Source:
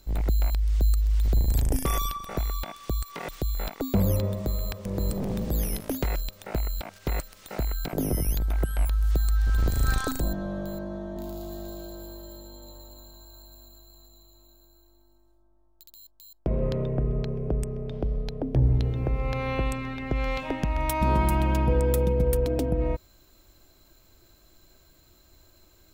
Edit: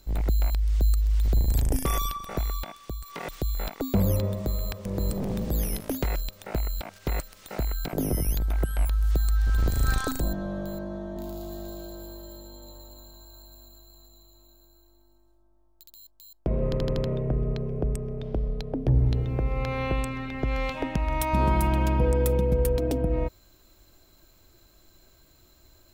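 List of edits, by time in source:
0:02.53–0:03.03: fade out, to −9.5 dB
0:16.65: stutter 0.08 s, 5 plays

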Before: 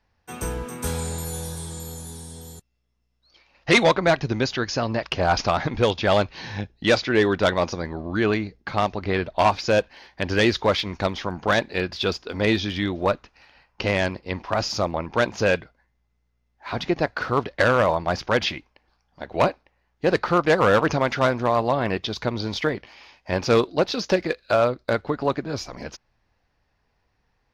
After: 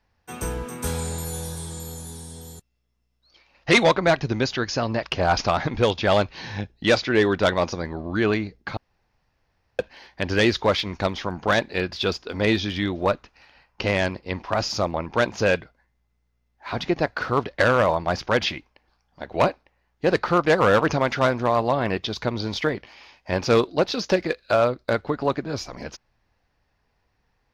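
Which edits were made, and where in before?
0:08.77–0:09.79: fill with room tone

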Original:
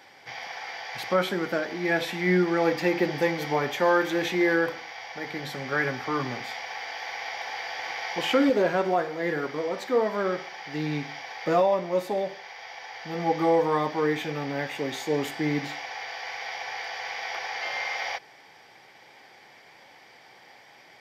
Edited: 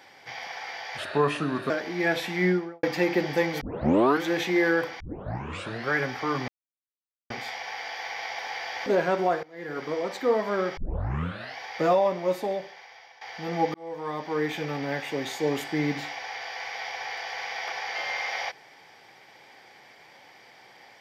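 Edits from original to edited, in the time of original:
0:00.98–0:01.55: play speed 79%
0:02.25–0:02.68: fade out and dull
0:03.46: tape start 0.61 s
0:04.85: tape start 0.90 s
0:06.33: splice in silence 0.82 s
0:07.89–0:08.53: remove
0:09.10–0:09.51: fade in quadratic, from −19 dB
0:10.44: tape start 0.81 s
0:12.01–0:12.88: fade out, to −14 dB
0:13.41–0:14.28: fade in

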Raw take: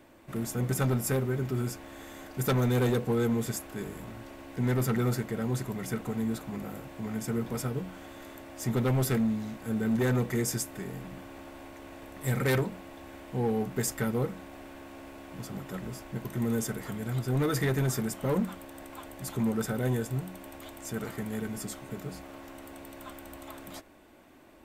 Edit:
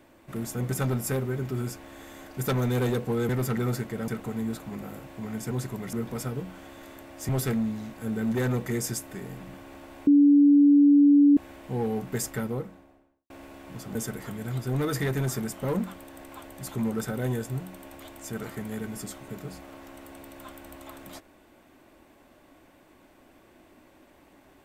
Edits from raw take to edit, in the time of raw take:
0:03.29–0:04.68: remove
0:05.47–0:05.89: move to 0:07.32
0:08.68–0:08.93: remove
0:11.71–0:13.01: beep over 287 Hz −13.5 dBFS
0:13.85–0:14.94: fade out and dull
0:15.59–0:16.56: remove

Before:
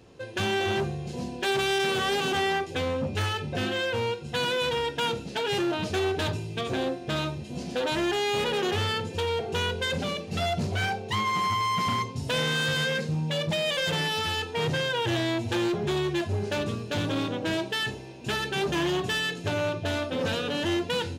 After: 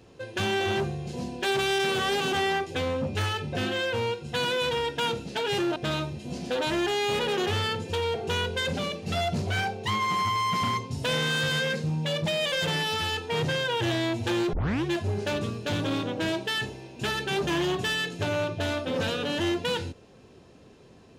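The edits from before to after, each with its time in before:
0:05.76–0:07.01: remove
0:15.78: tape start 0.32 s

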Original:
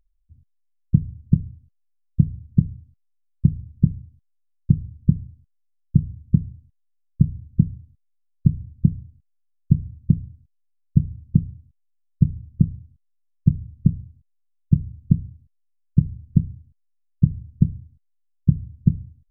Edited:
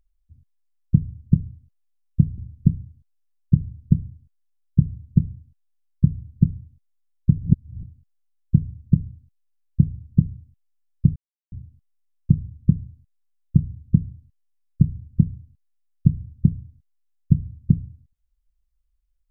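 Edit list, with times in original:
0:02.38–0:03.55: remove
0:08.55–0:09.00: reverse
0:12.33–0:12.69: silence

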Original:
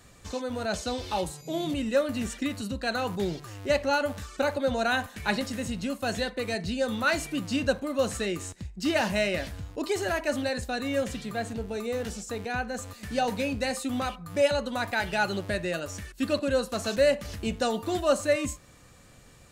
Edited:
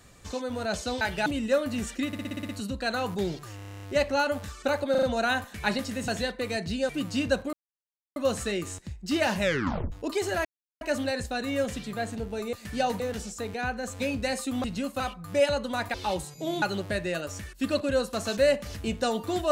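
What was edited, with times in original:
0:01.01–0:01.69: swap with 0:14.96–0:15.21
0:02.50: stutter 0.06 s, 8 plays
0:03.57: stutter 0.03 s, 10 plays
0:04.65: stutter 0.04 s, 4 plays
0:05.70–0:06.06: move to 0:14.02
0:06.87–0:07.26: remove
0:07.90: splice in silence 0.63 s
0:09.15: tape stop 0.51 s
0:10.19: splice in silence 0.36 s
0:12.91–0:13.38: move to 0:11.91

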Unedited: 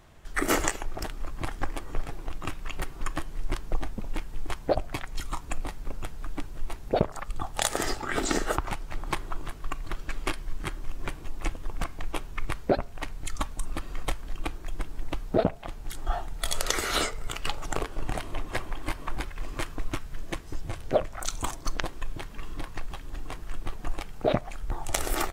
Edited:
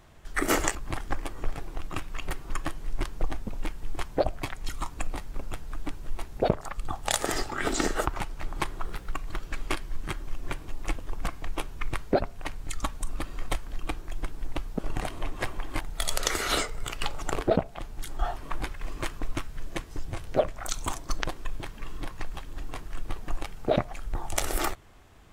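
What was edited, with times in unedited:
0:00.75–0:01.26: remove
0:09.36–0:09.69: play speed 120%
0:15.35–0:16.24: swap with 0:17.91–0:18.93

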